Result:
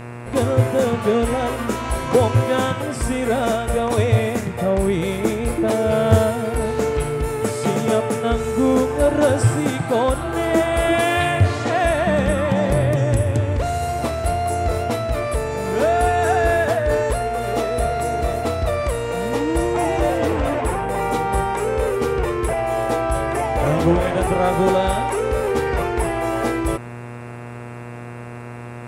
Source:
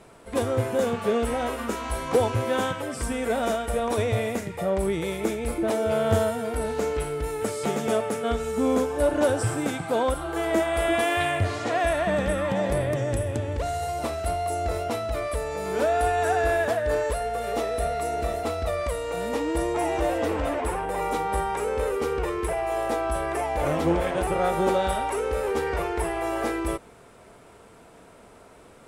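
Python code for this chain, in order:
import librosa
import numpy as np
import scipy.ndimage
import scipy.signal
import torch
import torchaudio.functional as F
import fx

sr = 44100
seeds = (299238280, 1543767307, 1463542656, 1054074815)

y = fx.peak_eq(x, sr, hz=120.0, db=6.0, octaves=1.5)
y = fx.dmg_buzz(y, sr, base_hz=120.0, harmonics=23, level_db=-39.0, tilt_db=-5, odd_only=False)
y = y * 10.0 ** (5.0 / 20.0)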